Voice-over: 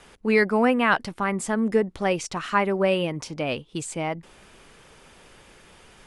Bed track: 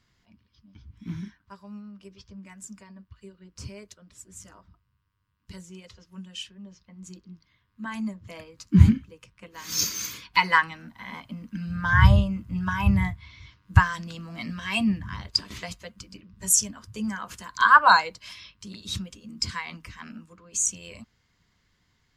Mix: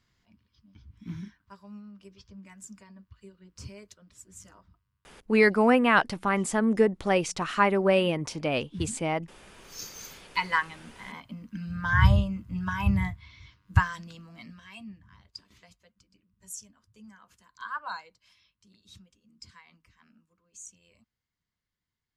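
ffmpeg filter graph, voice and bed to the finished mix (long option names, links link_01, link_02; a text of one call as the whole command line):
ffmpeg -i stem1.wav -i stem2.wav -filter_complex "[0:a]adelay=5050,volume=-0.5dB[link_01];[1:a]volume=14.5dB,afade=type=out:start_time=4.64:duration=0.95:silence=0.125893,afade=type=in:start_time=9.61:duration=1.34:silence=0.125893,afade=type=out:start_time=13.61:duration=1.15:silence=0.141254[link_02];[link_01][link_02]amix=inputs=2:normalize=0" out.wav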